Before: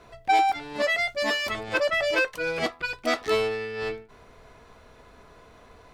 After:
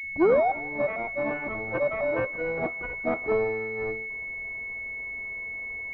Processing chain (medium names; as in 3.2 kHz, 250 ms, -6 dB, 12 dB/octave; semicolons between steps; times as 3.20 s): tape start-up on the opening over 0.50 s; thinning echo 168 ms, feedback 44%, high-pass 420 Hz, level -19 dB; class-D stage that switches slowly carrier 2.2 kHz